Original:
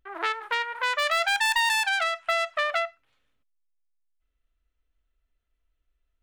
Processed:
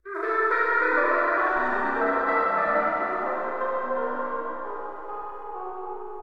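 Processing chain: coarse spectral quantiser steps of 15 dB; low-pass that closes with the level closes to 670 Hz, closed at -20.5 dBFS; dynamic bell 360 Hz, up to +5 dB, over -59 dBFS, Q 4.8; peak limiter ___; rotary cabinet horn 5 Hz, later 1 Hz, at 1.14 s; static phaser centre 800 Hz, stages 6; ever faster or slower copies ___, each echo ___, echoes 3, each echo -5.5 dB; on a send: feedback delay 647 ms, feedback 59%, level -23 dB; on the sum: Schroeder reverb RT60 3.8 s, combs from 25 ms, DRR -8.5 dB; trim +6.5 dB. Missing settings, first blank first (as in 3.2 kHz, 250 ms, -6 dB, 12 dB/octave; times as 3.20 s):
-18 dBFS, 730 ms, -4 st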